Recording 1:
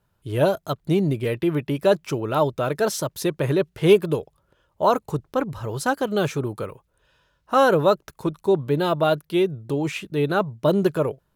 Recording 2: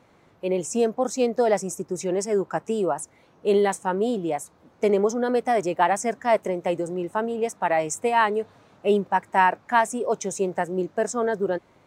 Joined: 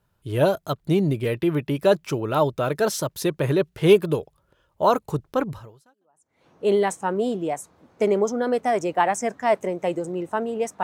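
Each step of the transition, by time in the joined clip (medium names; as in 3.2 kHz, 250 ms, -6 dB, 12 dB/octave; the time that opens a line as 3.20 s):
recording 1
6.00 s: go over to recording 2 from 2.82 s, crossfade 0.94 s exponential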